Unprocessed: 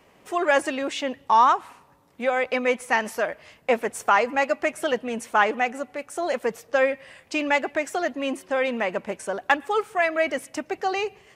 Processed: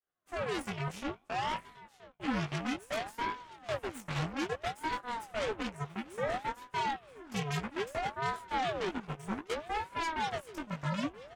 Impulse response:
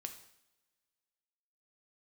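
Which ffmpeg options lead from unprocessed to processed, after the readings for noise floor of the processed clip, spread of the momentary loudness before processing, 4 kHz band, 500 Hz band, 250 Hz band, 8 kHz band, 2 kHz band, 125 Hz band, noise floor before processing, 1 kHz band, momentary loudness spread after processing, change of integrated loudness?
−62 dBFS, 9 LU, −6.5 dB, −14.5 dB, −7.5 dB, −11.0 dB, −14.0 dB, can't be measured, −57 dBFS, −12.0 dB, 6 LU, −12.0 dB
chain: -filter_complex "[0:a]agate=range=-33dB:threshold=-43dB:ratio=3:detection=peak,equalizer=frequency=200:width_type=o:width=0.33:gain=11,equalizer=frequency=630:width_type=o:width=0.33:gain=4,equalizer=frequency=4000:width_type=o:width=0.33:gain=-10,acrossover=split=270|2300[link_01][link_02][link_03];[link_01]acompressor=threshold=-44dB:ratio=6[link_04];[link_02]alimiter=limit=-19.5dB:level=0:latency=1:release=28[link_05];[link_04][link_05][link_03]amix=inputs=3:normalize=0,flanger=delay=8.4:depth=6.2:regen=-49:speed=0.22:shape=triangular,aeval=exprs='0.15*(cos(1*acos(clip(val(0)/0.15,-1,1)))-cos(1*PI/2))+0.075*(cos(6*acos(clip(val(0)/0.15,-1,1)))-cos(6*PI/2))':channel_layout=same,flanger=delay=16:depth=6.7:speed=0.53,aecho=1:1:975|1950|2925|3900:0.126|0.0655|0.034|0.0177,aeval=exprs='val(0)*sin(2*PI*570*n/s+570*0.75/0.6*sin(2*PI*0.6*n/s))':channel_layout=same,volume=-7dB"

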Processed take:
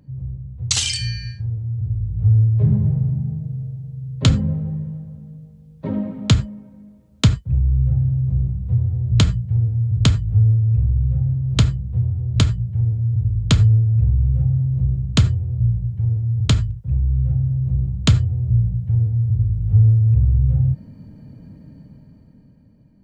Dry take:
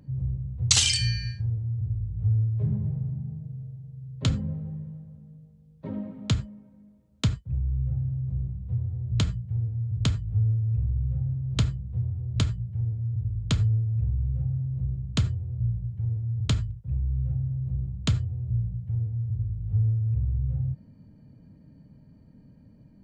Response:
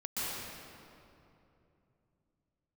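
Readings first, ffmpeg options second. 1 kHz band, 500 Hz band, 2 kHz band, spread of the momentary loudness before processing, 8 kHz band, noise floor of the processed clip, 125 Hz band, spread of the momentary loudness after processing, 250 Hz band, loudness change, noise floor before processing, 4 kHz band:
+9.0 dB, +9.5 dB, +5.5 dB, 10 LU, +2.0 dB, −48 dBFS, +9.5 dB, 11 LU, +9.5 dB, +9.0 dB, −54 dBFS, +4.0 dB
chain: -af "dynaudnorm=framelen=140:gausssize=17:maxgain=11.5dB"

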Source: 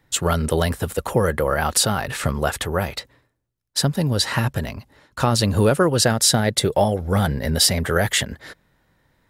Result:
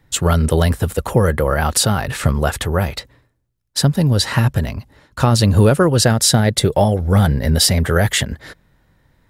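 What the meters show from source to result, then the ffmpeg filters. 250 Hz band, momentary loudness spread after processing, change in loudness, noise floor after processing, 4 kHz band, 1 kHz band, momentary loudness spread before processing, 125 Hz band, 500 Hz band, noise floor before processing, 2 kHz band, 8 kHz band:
+5.0 dB, 10 LU, +4.0 dB, −60 dBFS, +2.0 dB, +2.5 dB, 10 LU, +7.5 dB, +3.0 dB, −68 dBFS, +2.0 dB, +2.0 dB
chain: -af "lowshelf=frequency=170:gain=8,volume=2dB"

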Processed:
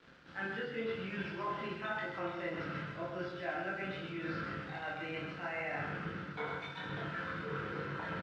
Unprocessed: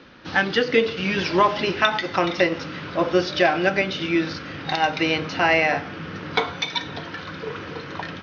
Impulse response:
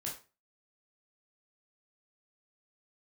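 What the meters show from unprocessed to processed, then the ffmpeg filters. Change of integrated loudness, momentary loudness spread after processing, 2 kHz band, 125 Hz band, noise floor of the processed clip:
−17.5 dB, 3 LU, −16.0 dB, −11.0 dB, −48 dBFS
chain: -filter_complex "[0:a]areverse,acompressor=threshold=-30dB:ratio=6,areverse,equalizer=frequency=1400:width_type=o:width=0.46:gain=5.5,aecho=1:1:130:0.501,acrossover=split=3100[link_01][link_02];[link_02]acompressor=threshold=-55dB:ratio=4:attack=1:release=60[link_03];[link_01][link_03]amix=inputs=2:normalize=0[link_04];[1:a]atrim=start_sample=2205[link_05];[link_04][link_05]afir=irnorm=-1:irlink=0,aeval=exprs='sgn(val(0))*max(abs(val(0))-0.00251,0)':channel_layout=same,lowpass=5100,bandreject=frequency=50:width_type=h:width=6,bandreject=frequency=100:width_type=h:width=6,bandreject=frequency=150:width_type=h:width=6,volume=-7dB"

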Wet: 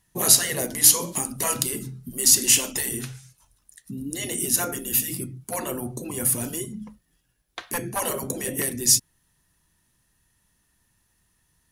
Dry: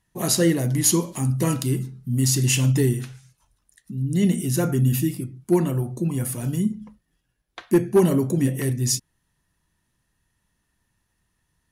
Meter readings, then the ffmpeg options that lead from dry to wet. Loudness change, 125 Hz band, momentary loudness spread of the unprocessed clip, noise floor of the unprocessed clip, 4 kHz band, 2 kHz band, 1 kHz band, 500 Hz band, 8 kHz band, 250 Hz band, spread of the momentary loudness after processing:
+0.5 dB, −15.0 dB, 8 LU, −74 dBFS, +5.0 dB, +2.0 dB, +1.5 dB, −8.0 dB, +6.5 dB, −11.0 dB, 17 LU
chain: -af "afftfilt=real='re*lt(hypot(re,im),0.316)':imag='im*lt(hypot(re,im),0.316)':win_size=1024:overlap=0.75,highshelf=frequency=5300:gain=8.5,volume=2dB"

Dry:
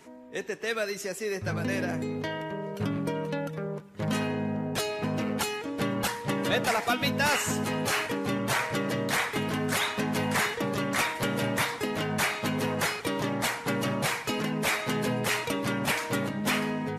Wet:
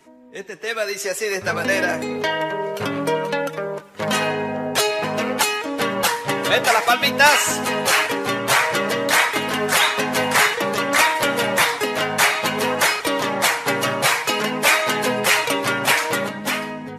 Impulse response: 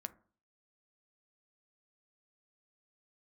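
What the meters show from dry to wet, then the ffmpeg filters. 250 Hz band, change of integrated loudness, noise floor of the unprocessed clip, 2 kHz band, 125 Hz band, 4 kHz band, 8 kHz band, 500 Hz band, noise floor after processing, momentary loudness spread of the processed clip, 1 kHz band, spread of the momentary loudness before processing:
+2.5 dB, +10.0 dB, −40 dBFS, +11.5 dB, −0.5 dB, +11.5 dB, +11.5 dB, +9.0 dB, −34 dBFS, 8 LU, +11.5 dB, 6 LU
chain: -filter_complex "[0:a]acrossover=split=410[link_01][link_02];[link_02]dynaudnorm=framelen=250:gausssize=7:maxgain=14dB[link_03];[link_01][link_03]amix=inputs=2:normalize=0,flanger=delay=3.1:depth=4.7:regen=57:speed=0.54:shape=sinusoidal,volume=3.5dB"

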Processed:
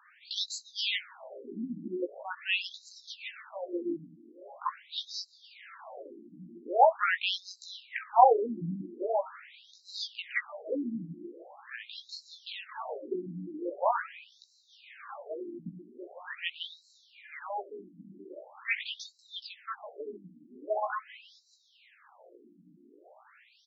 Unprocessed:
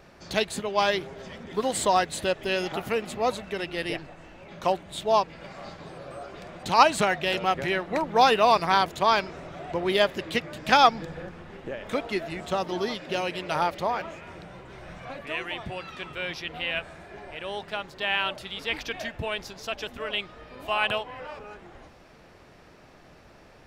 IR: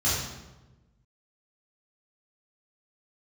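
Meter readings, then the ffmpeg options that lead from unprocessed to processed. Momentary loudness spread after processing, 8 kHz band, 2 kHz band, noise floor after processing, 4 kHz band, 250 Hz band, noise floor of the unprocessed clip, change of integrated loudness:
19 LU, below −10 dB, −8.0 dB, −64 dBFS, −7.0 dB, −6.0 dB, −53 dBFS, −6.5 dB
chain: -filter_complex "[0:a]asplit=2[link_01][link_02];[link_02]adelay=17,volume=-4dB[link_03];[link_01][link_03]amix=inputs=2:normalize=0,afftfilt=real='re*between(b*sr/1024,230*pow(5500/230,0.5+0.5*sin(2*PI*0.43*pts/sr))/1.41,230*pow(5500/230,0.5+0.5*sin(2*PI*0.43*pts/sr))*1.41)':imag='im*between(b*sr/1024,230*pow(5500/230,0.5+0.5*sin(2*PI*0.43*pts/sr))/1.41,230*pow(5500/230,0.5+0.5*sin(2*PI*0.43*pts/sr))*1.41)':win_size=1024:overlap=0.75"

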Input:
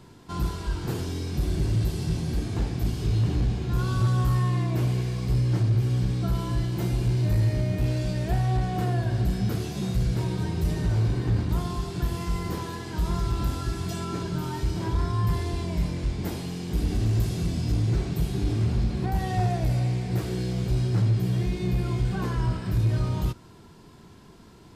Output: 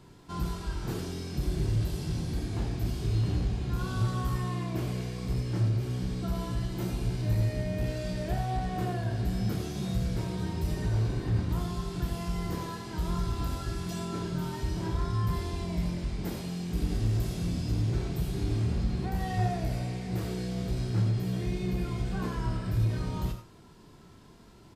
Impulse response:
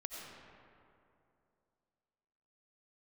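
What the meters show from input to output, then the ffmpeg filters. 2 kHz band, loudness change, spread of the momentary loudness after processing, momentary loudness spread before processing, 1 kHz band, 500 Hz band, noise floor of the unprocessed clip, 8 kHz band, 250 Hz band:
−3.5 dB, −5.0 dB, 6 LU, 7 LU, −3.5 dB, −3.5 dB, −49 dBFS, −3.5 dB, −3.5 dB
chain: -filter_complex "[0:a]asplit=2[link_01][link_02];[link_02]adelay=28,volume=-8.5dB[link_03];[link_01][link_03]amix=inputs=2:normalize=0[link_04];[1:a]atrim=start_sample=2205,atrim=end_sample=4410[link_05];[link_04][link_05]afir=irnorm=-1:irlink=0"

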